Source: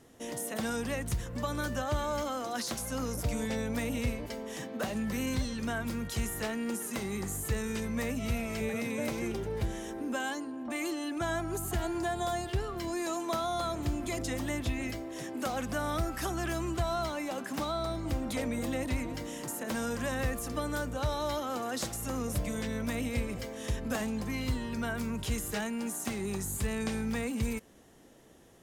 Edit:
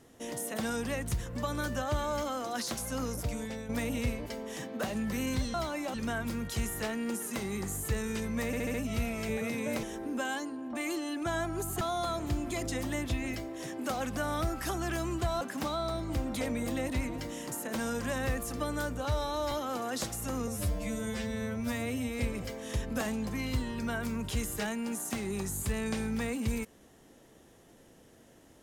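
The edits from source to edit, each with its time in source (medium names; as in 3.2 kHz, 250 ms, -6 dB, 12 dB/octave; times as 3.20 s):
3.04–3.69 s: fade out linear, to -9 dB
8.06 s: stutter 0.07 s, 5 plays
9.15–9.78 s: delete
11.76–13.37 s: delete
16.97–17.37 s: move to 5.54 s
21.01–21.32 s: stretch 1.5×
22.28–23.14 s: stretch 2×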